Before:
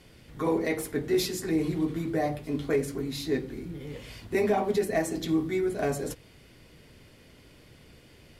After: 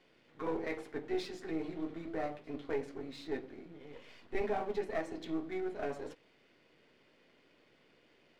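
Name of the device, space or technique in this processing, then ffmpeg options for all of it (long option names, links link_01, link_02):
crystal radio: -filter_complex "[0:a]highpass=290,lowpass=3400,aeval=exprs='if(lt(val(0),0),0.447*val(0),val(0))':channel_layout=same,asettb=1/sr,asplit=3[link_01][link_02][link_03];[link_01]atrim=end=3.744[link_04];[link_02]atrim=start=3.74:end=4.41,asetpts=PTS-STARTPTS,afade=type=in:duration=0.004:curve=qsin,afade=type=out:start_time=0.666:duration=0.004:curve=qsin,asubboost=boost=12:cutoff=56[link_05];[link_03]atrim=start=4.406[link_06];[link_04][link_05]acrossfade=duration=0.004:curve1=hsin:curve2=qsin[link_07];[link_07][link_06]acrossfade=duration=0.004:curve1=qsin:curve2=hsin,volume=-6dB"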